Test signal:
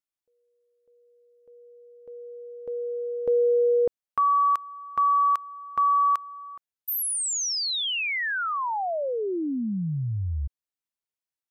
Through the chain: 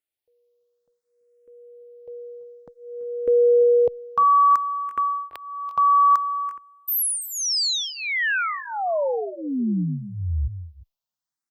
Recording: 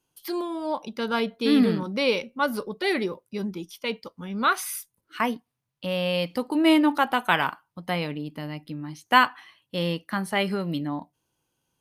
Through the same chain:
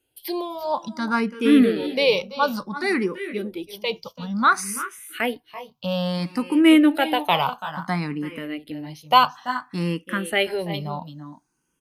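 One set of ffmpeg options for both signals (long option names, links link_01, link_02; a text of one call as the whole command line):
ffmpeg -i in.wav -filter_complex "[0:a]asplit=2[link_01][link_02];[link_02]aecho=0:1:335|355:0.178|0.15[link_03];[link_01][link_03]amix=inputs=2:normalize=0,asplit=2[link_04][link_05];[link_05]afreqshift=0.58[link_06];[link_04][link_06]amix=inputs=2:normalize=1,volume=5.5dB" out.wav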